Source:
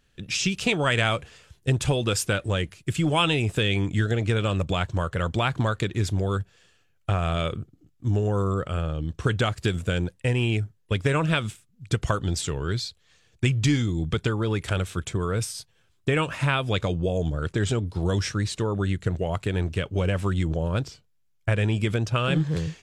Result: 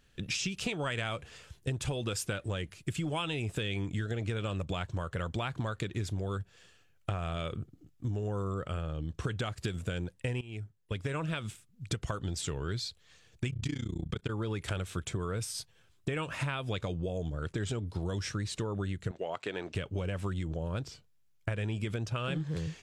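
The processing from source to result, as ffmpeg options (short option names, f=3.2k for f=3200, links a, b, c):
-filter_complex "[0:a]asplit=3[a][b][c];[a]afade=t=out:st=13.48:d=0.02[d];[b]tremolo=f=30:d=0.974,afade=t=in:st=13.48:d=0.02,afade=t=out:st=14.29:d=0.02[e];[c]afade=t=in:st=14.29:d=0.02[f];[d][e][f]amix=inputs=3:normalize=0,asettb=1/sr,asplit=3[g][h][i];[g]atrim=end=19.114[j];[h]atrim=start=19.11:end=19.75,asetpts=PTS-STARTPTS,afade=t=in:d=0.004:c=qsin,afade=t=out:st=0.636:d=0.004:c=qsin,highpass=380,lowpass=5.8k[k];[i]atrim=start=19.746[l];[j][k]acrossfade=d=0.004:c1=hsin:c2=qsin[m];[m][l]acrossfade=d=0.004:c1=qsin:c2=hsin,asplit=2[n][o];[n]atrim=end=10.41,asetpts=PTS-STARTPTS,afade=t=out:st=10.406:d=0.004:c=hsin:silence=0.105925[p];[o]atrim=start=10.41,asetpts=PTS-STARTPTS,afade=t=in:d=1.9:c=qsin:silence=0.105925[q];[p][q]concat=n=2:v=0:a=1,acompressor=threshold=-32dB:ratio=5"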